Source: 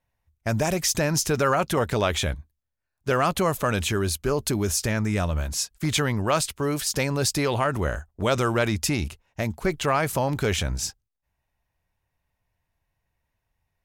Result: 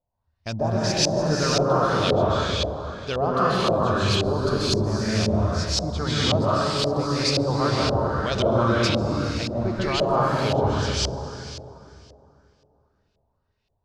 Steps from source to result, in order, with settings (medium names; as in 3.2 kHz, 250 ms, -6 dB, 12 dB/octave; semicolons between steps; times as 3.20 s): resonant high shelf 3.1 kHz +14 dB, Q 3; plate-style reverb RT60 2.9 s, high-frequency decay 0.7×, pre-delay 120 ms, DRR -6 dB; LFO low-pass saw up 1.9 Hz 610–2900 Hz; trim -6 dB